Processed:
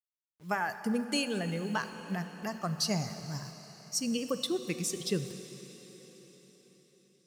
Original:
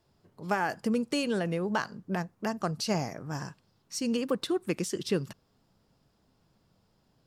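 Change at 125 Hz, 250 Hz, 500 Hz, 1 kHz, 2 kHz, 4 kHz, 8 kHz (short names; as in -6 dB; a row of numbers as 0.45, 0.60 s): -1.0, -3.0, -4.5, -3.5, -1.5, +2.0, +3.5 dB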